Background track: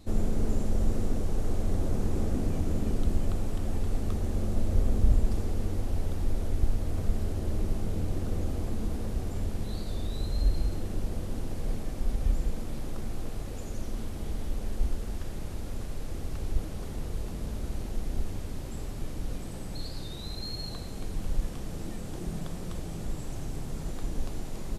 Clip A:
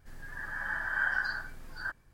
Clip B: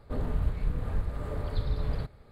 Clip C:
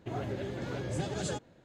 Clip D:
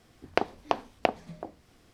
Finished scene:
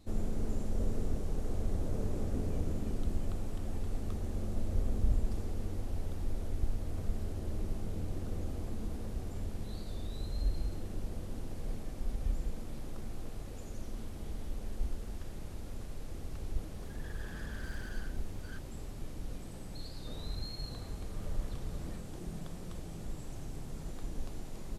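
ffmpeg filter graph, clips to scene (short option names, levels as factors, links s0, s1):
-filter_complex "[2:a]asplit=2[s0][s1];[0:a]volume=0.447[s2];[s0]lowpass=f=470:t=q:w=2.1[s3];[1:a]aeval=exprs='(tanh(89.1*val(0)+0.75)-tanh(0.75))/89.1':c=same[s4];[s3]atrim=end=2.31,asetpts=PTS-STARTPTS,volume=0.282,afade=t=in:d=0.004:c=hsin,afade=t=out:st=2.306:d=0.004:c=hsin,adelay=670[s5];[s4]atrim=end=2.13,asetpts=PTS-STARTPTS,volume=0.335,afade=t=in:d=0.004:c=hsin,afade=t=out:st=2.126:d=0.004:c=hsin,adelay=16670[s6];[s1]atrim=end=2.31,asetpts=PTS-STARTPTS,volume=0.211,afade=t=in:d=0.004:c=hsin,afade=t=out:st=2.306:d=0.004:c=hsin,adelay=19950[s7];[s2][s5][s6][s7]amix=inputs=4:normalize=0"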